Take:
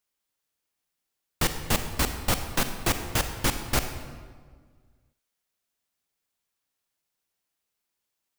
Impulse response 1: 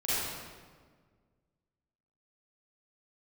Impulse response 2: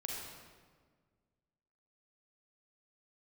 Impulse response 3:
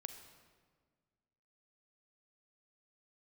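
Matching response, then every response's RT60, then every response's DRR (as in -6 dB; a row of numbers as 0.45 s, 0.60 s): 3; 1.6 s, 1.6 s, 1.7 s; -12.0 dB, -2.5 dB, 7.5 dB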